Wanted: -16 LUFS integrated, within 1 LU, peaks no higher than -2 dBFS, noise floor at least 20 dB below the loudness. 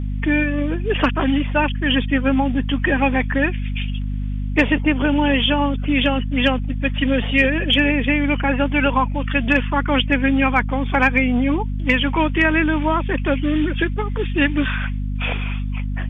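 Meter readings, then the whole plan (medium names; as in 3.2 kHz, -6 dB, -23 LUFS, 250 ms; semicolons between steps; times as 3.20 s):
hum 50 Hz; highest harmonic 250 Hz; hum level -21 dBFS; loudness -19.0 LUFS; peak level -3.0 dBFS; loudness target -16.0 LUFS
-> de-hum 50 Hz, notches 5; trim +3 dB; peak limiter -2 dBFS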